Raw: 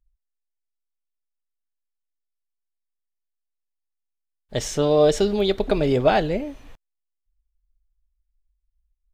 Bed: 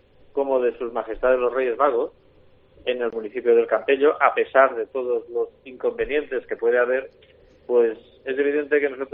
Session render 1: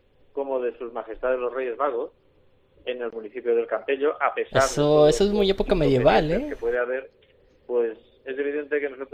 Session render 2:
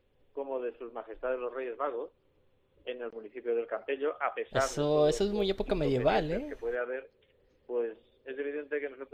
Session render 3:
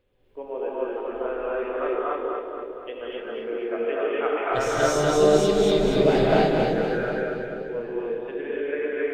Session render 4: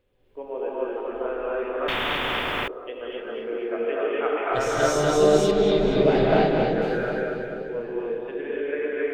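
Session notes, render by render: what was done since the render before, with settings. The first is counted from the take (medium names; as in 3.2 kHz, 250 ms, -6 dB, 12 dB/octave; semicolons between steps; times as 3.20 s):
add bed -5.5 dB
trim -9 dB
two-band feedback delay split 570 Hz, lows 390 ms, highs 240 ms, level -4 dB; gated-style reverb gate 310 ms rising, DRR -6 dB
1.88–2.68 s: spectrum-flattening compressor 10:1; 5.51–6.82 s: low-pass 4.1 kHz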